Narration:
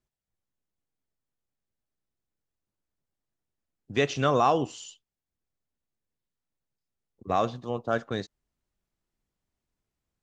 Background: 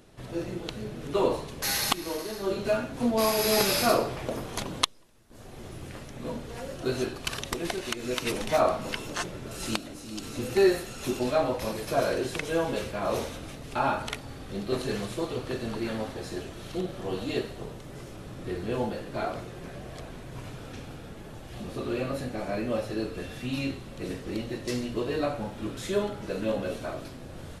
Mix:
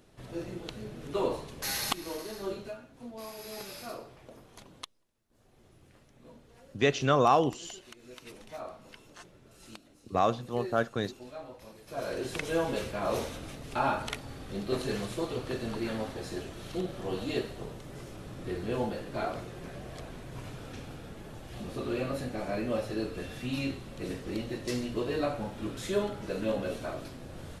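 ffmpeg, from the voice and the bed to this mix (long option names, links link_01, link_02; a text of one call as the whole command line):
ffmpeg -i stem1.wav -i stem2.wav -filter_complex "[0:a]adelay=2850,volume=-0.5dB[link_01];[1:a]volume=11.5dB,afade=type=out:start_time=2.43:duration=0.32:silence=0.211349,afade=type=in:start_time=11.84:duration=0.59:silence=0.149624[link_02];[link_01][link_02]amix=inputs=2:normalize=0" out.wav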